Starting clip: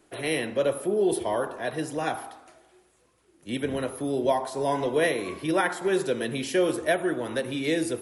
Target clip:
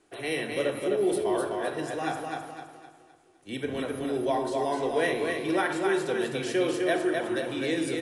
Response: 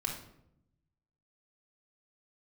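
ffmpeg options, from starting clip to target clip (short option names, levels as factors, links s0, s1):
-filter_complex "[0:a]lowshelf=f=180:g=-5,aecho=1:1:257|514|771|1028|1285:0.631|0.246|0.096|0.0374|0.0146,asplit=2[s0][s1];[1:a]atrim=start_sample=2205[s2];[s1][s2]afir=irnorm=-1:irlink=0,volume=0.668[s3];[s0][s3]amix=inputs=2:normalize=0,aresample=22050,aresample=44100,volume=0.422"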